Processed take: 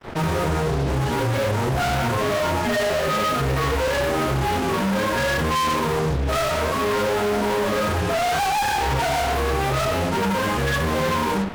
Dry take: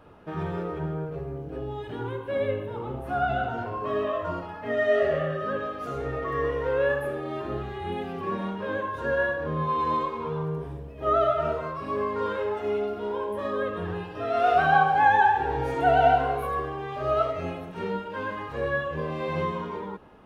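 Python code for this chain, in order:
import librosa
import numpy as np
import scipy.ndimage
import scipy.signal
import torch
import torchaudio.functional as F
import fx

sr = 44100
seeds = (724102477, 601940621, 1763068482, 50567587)

y = fx.room_shoebox(x, sr, seeds[0], volume_m3=360.0, walls='furnished', distance_m=7.4)
y = fx.fuzz(y, sr, gain_db=37.0, gate_db=-36.0)
y = fx.stretch_vocoder(y, sr, factor=0.57)
y = F.gain(torch.from_numpy(y), -6.5).numpy()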